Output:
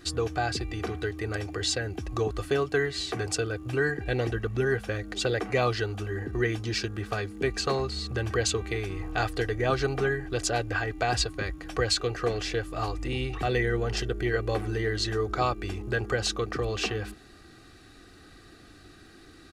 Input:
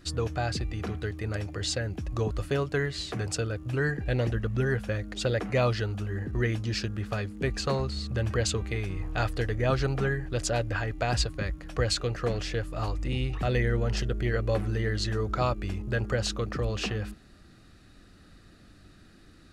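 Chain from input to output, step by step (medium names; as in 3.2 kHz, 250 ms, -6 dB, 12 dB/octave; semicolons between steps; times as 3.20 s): bass shelf 94 Hz -11.5 dB; comb 2.6 ms, depth 51%; in parallel at -2 dB: compression, threshold -39 dBFS, peak gain reduction 16 dB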